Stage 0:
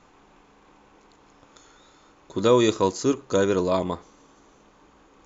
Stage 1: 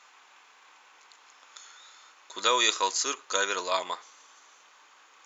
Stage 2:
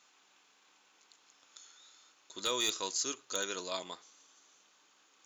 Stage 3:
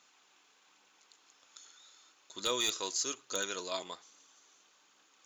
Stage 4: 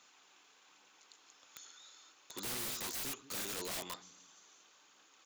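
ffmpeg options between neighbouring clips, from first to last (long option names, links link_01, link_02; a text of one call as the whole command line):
ffmpeg -i in.wav -af "highpass=1400,volume=6.5dB" out.wav
ffmpeg -i in.wav -af "equalizer=frequency=125:width_type=o:width=1:gain=4,equalizer=frequency=500:width_type=o:width=1:gain=-5,equalizer=frequency=1000:width_type=o:width=1:gain=-9,equalizer=frequency=2000:width_type=o:width=1:gain=-7,asoftclip=type=hard:threshold=-19.5dB,lowshelf=frequency=460:gain=6.5,volume=-4.5dB" out.wav
ffmpeg -i in.wav -af "aphaser=in_gain=1:out_gain=1:delay=3.1:decay=0.25:speed=1.2:type=triangular" out.wav
ffmpeg -i in.wav -filter_complex "[0:a]acrossover=split=260[link_01][link_02];[link_01]aecho=1:1:175|350|525|700:0.355|0.117|0.0386|0.0128[link_03];[link_02]aeval=exprs='(mod(66.8*val(0)+1,2)-1)/66.8':channel_layout=same[link_04];[link_03][link_04]amix=inputs=2:normalize=0,volume=1.5dB" out.wav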